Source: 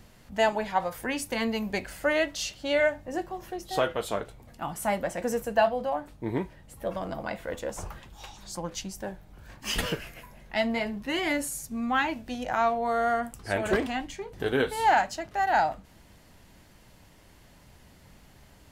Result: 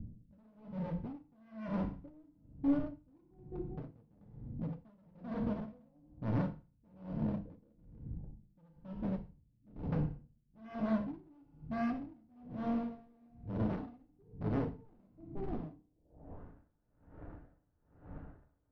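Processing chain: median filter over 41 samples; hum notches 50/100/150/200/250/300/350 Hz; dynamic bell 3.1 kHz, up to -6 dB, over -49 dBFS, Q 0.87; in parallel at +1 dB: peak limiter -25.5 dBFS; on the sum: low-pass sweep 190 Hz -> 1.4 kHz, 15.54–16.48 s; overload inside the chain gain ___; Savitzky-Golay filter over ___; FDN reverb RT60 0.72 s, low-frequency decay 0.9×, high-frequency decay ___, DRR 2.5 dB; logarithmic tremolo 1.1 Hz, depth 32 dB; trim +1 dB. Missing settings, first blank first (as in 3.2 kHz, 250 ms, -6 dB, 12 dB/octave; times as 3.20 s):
32 dB, 15 samples, 0.95×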